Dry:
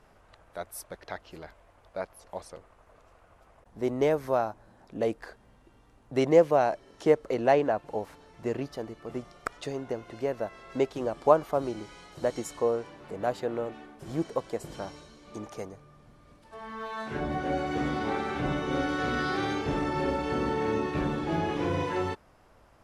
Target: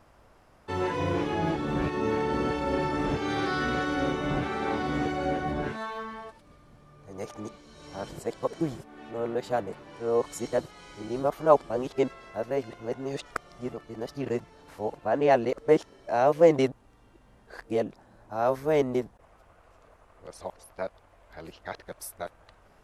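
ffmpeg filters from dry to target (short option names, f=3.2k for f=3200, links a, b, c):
-af "areverse,volume=1dB"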